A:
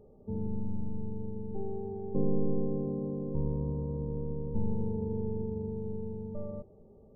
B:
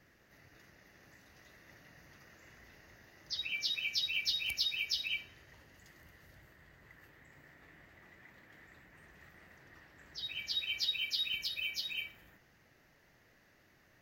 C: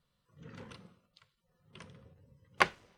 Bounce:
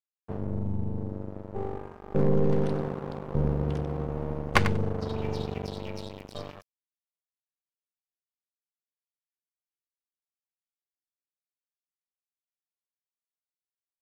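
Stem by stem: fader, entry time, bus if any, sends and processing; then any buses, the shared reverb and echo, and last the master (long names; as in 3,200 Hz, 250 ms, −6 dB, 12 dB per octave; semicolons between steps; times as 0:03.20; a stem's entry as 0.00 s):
+1.5 dB, 0.00 s, no send, echo send −21 dB, octave-band graphic EQ 125/250/500 Hz +7/−8/+5 dB
−17.0 dB, 1.70 s, no send, echo send −9 dB, comb filter 2.1 ms, depth 95%
+1.5 dB, 1.95 s, no send, echo send −11 dB, no processing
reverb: not used
echo: repeating echo 94 ms, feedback 18%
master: dead-zone distortion −33 dBFS; parametric band 230 Hz +3 dB 1.2 octaves; leveller curve on the samples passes 1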